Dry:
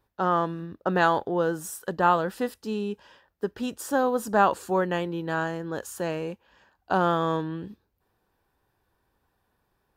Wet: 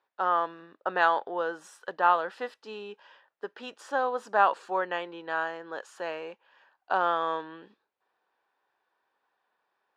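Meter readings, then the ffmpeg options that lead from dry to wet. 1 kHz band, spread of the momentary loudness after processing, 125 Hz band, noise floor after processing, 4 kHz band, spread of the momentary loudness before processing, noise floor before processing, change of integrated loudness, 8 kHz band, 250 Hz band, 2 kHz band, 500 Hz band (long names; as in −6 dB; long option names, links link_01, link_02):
−1.0 dB, 17 LU, below −20 dB, −82 dBFS, −2.5 dB, 12 LU, −74 dBFS, −2.0 dB, below −10 dB, −14.0 dB, −0.5 dB, −5.0 dB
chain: -af "highpass=640,lowpass=3500"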